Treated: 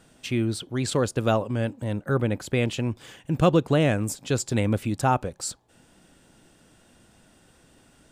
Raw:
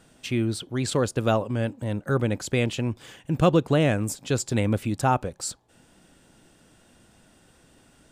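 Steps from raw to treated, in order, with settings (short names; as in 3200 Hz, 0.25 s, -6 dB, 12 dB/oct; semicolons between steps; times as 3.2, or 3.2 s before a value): 2.03–2.63 bell 6300 Hz -6.5 dB 1.2 oct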